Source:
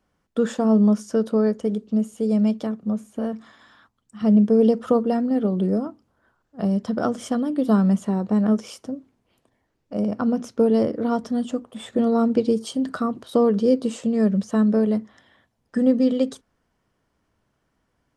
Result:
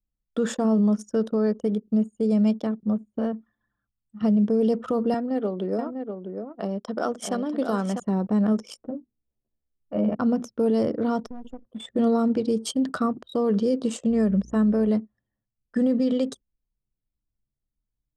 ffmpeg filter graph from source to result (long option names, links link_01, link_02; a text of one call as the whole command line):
ffmpeg -i in.wav -filter_complex "[0:a]asettb=1/sr,asplit=3[link_01][link_02][link_03];[link_01]atrim=end=5.144[link_04];[link_02]atrim=start=5.14:end=8,asetpts=PTS-STARTPTS,afade=type=in:duration=0.004:curve=qsin,afade=type=out:start_time=2.856:duration=0.004:curve=qsin,highpass=330,aecho=1:1:646:0.473,atrim=end_sample=126126[link_05];[link_03]atrim=start=7.996[link_06];[link_04][link_05]acrossfade=duration=0.004:curve1=hsin:curve2=qsin[link_07];[link_07][link_06]acrossfade=duration=0.004:curve1=qsin:curve2=hsin,asettb=1/sr,asplit=3[link_08][link_09][link_10];[link_08]atrim=end=8.774[link_11];[link_09]atrim=start=8.77:end=10.15,asetpts=PTS-STARTPTS,afade=type=in:duration=0.004:curve=qsin,afade=type=out:start_time=1.376:duration=0.004:curve=qsin,lowpass=frequency=3200:width=0.5412,lowpass=frequency=3200:width=1.3066,bandreject=frequency=50:width_type=h:width=6,bandreject=frequency=100:width_type=h:width=6,bandreject=frequency=150:width_type=h:width=6,bandreject=frequency=200:width_type=h:width=6,bandreject=frequency=250:width_type=h:width=6,bandreject=frequency=300:width_type=h:width=6,asplit=2[link_12][link_13];[link_13]adelay=13,volume=-3dB[link_14];[link_12][link_14]amix=inputs=2:normalize=0,atrim=end_sample=60858[link_15];[link_10]atrim=start=10.146[link_16];[link_11][link_15]acrossfade=duration=0.004:curve1=hsin:curve2=qsin[link_17];[link_17][link_16]acrossfade=duration=0.004:curve1=qsin:curve2=hsin,asettb=1/sr,asplit=3[link_18][link_19][link_20];[link_18]atrim=end=11.264[link_21];[link_19]atrim=start=11.26:end=11.66,asetpts=PTS-STARTPTS,afade=type=in:duration=0.004:curve=qsin,afade=type=out:start_time=0.396:duration=0.004:curve=qsin,lowshelf=frequency=160:gain=-7.5,acompressor=threshold=-29dB:ratio=12:attack=3.2:release=140:knee=1:detection=peak,acrusher=bits=5:dc=4:mix=0:aa=0.000001[link_22];[link_20]atrim=start=11.656[link_23];[link_21][link_22]acrossfade=duration=0.004:curve1=hsin:curve2=qsin[link_24];[link_24][link_23]acrossfade=duration=0.004:curve1=qsin:curve2=hsin,asettb=1/sr,asplit=3[link_25][link_26][link_27];[link_25]atrim=end=14.104[link_28];[link_26]atrim=start=14.1:end=14.89,asetpts=PTS-STARTPTS,afade=type=in:duration=0.004:curve=qsin,afade=type=out:start_time=0.786:duration=0.004:curve=qsin,equalizer=frequency=4100:width=2.7:gain=-6.5,aeval=exprs='val(0)+0.00708*(sin(2*PI*60*n/s)+sin(2*PI*2*60*n/s)/2+sin(2*PI*3*60*n/s)/3+sin(2*PI*4*60*n/s)/4+sin(2*PI*5*60*n/s)/5)':channel_layout=same[link_29];[link_27]atrim=start=14.886[link_30];[link_28][link_29]acrossfade=duration=0.004:curve1=hsin:curve2=qsin[link_31];[link_31][link_30]acrossfade=duration=0.004:curve1=qsin:curve2=hsin,anlmdn=1.58,highshelf=frequency=5200:gain=6.5,alimiter=limit=-15dB:level=0:latency=1:release=37" out.wav